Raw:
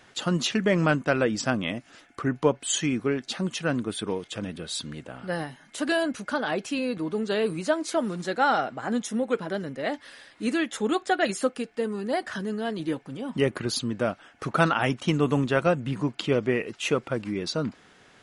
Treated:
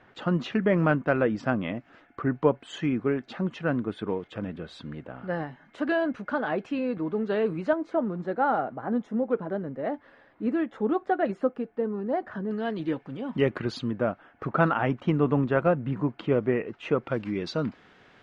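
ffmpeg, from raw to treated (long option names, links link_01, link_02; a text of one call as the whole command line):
ffmpeg -i in.wav -af "asetnsamples=nb_out_samples=441:pad=0,asendcmd='7.73 lowpass f 1100;12.51 lowpass f 2700;13.91 lowpass f 1600;17.07 lowpass f 3400',lowpass=1800" out.wav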